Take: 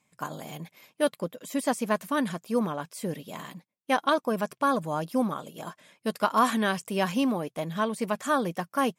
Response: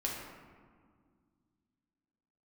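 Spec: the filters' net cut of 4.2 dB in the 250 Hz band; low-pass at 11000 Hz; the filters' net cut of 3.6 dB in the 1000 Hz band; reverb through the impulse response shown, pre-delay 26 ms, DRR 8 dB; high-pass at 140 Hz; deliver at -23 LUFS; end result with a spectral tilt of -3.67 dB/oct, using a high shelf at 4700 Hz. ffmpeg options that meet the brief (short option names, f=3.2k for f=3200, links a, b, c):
-filter_complex "[0:a]highpass=140,lowpass=11k,equalizer=f=250:t=o:g=-4,equalizer=f=1k:t=o:g=-4,highshelf=f=4.7k:g=-4.5,asplit=2[a][b];[1:a]atrim=start_sample=2205,adelay=26[c];[b][c]afir=irnorm=-1:irlink=0,volume=-11.5dB[d];[a][d]amix=inputs=2:normalize=0,volume=7.5dB"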